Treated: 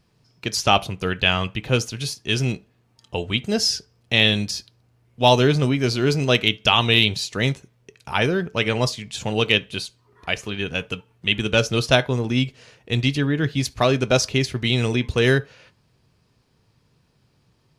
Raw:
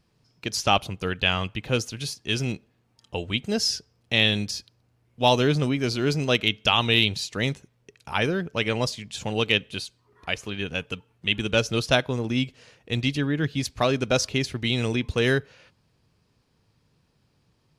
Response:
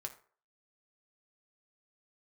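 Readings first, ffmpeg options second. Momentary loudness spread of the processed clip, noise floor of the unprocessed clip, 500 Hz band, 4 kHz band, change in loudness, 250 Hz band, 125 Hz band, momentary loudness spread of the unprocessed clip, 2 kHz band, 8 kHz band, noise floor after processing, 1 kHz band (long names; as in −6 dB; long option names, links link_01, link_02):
11 LU, −68 dBFS, +4.0 dB, +3.5 dB, +4.0 dB, +3.5 dB, +5.0 dB, 11 LU, +3.5 dB, +3.5 dB, −64 dBFS, +4.0 dB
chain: -filter_complex "[0:a]asplit=2[link_01][link_02];[1:a]atrim=start_sample=2205,atrim=end_sample=3528[link_03];[link_02][link_03]afir=irnorm=-1:irlink=0,volume=-2dB[link_04];[link_01][link_04]amix=inputs=2:normalize=0"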